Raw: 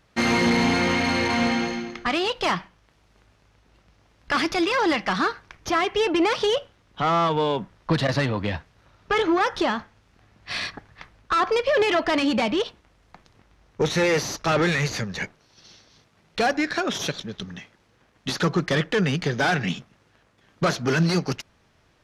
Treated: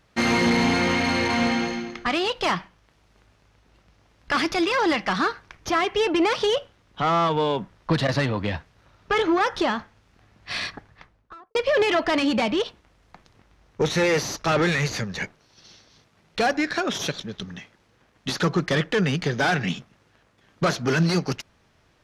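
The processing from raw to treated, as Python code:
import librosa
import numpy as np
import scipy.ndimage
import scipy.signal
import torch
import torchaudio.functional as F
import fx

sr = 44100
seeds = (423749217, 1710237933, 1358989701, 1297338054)

y = fx.studio_fade_out(x, sr, start_s=10.69, length_s=0.86)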